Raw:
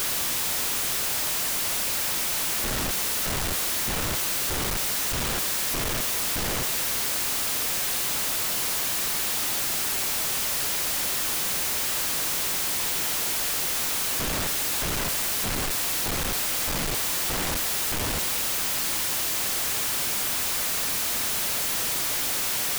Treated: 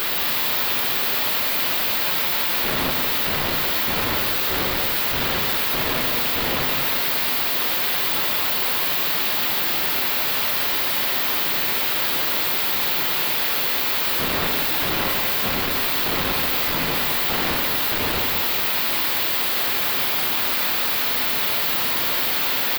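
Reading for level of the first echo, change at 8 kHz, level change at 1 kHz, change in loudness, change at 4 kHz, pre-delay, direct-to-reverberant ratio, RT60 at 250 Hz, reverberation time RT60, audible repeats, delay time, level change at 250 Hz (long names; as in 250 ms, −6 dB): −8.0 dB, −6.5 dB, +7.5 dB, +5.0 dB, +5.5 dB, 5 ms, 1.5 dB, 1.8 s, 1.9 s, 1, 182 ms, +6.0 dB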